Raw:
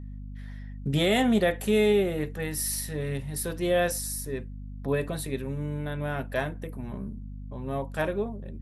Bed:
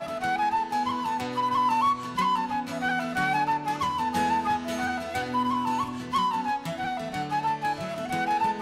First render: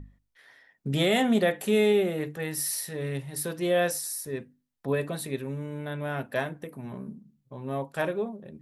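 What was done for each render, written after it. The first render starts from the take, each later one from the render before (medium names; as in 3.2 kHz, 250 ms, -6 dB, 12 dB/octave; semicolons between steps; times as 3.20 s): hum notches 50/100/150/200/250/300 Hz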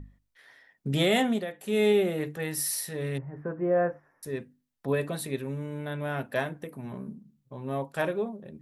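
1.19–1.87 s: dip -12 dB, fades 0.27 s; 3.18–4.23 s: inverse Chebyshev low-pass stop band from 3.9 kHz, stop band 50 dB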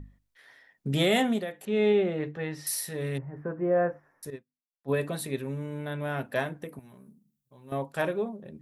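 1.65–2.67 s: distance through air 190 m; 4.30–4.92 s: upward expansion 2.5:1, over -47 dBFS; 6.79–7.72 s: pre-emphasis filter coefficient 0.8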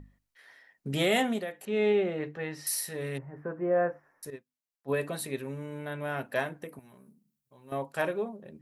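bass shelf 260 Hz -7 dB; band-stop 3.5 kHz, Q 15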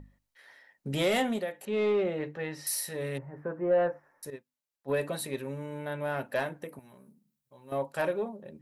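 saturation -20.5 dBFS, distortion -17 dB; small resonant body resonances 560/880/3900 Hz, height 6 dB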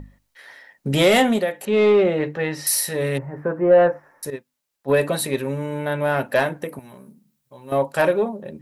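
trim +11.5 dB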